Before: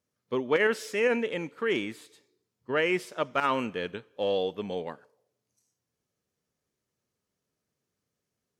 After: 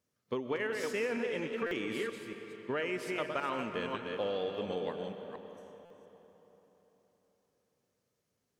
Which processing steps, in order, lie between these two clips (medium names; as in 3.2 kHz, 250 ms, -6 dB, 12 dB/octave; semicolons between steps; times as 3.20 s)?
chunks repeated in reverse 233 ms, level -7.5 dB; compression 6:1, threshold -32 dBFS, peak gain reduction 12.5 dB; algorithmic reverb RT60 4.1 s, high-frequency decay 0.7×, pre-delay 90 ms, DRR 7.5 dB; buffer glitch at 1.66/5.85 s, samples 256, times 8